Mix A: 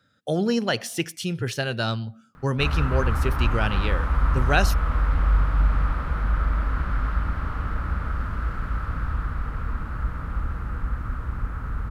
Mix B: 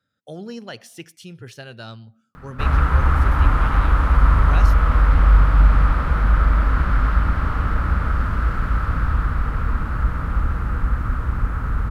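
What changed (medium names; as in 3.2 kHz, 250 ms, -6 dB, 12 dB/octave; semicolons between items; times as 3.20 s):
speech -11.0 dB; background +7.0 dB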